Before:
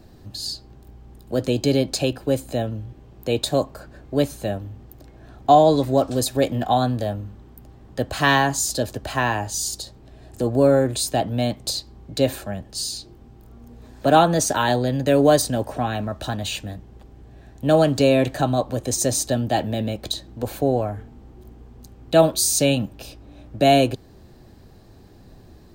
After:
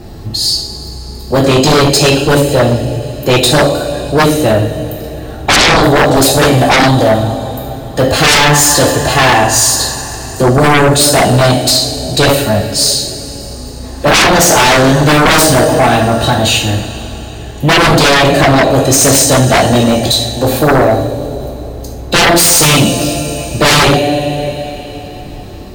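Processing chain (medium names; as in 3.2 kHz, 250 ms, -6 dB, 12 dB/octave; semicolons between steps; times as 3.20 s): formant-preserving pitch shift +1 st; two-slope reverb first 0.56 s, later 3.8 s, from -17 dB, DRR -1.5 dB; sine folder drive 17 dB, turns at 1.5 dBFS; trim -5.5 dB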